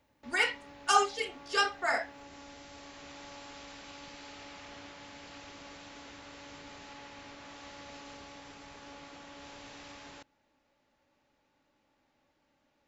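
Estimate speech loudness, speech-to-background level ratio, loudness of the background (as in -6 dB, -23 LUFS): -30.0 LUFS, 18.5 dB, -48.5 LUFS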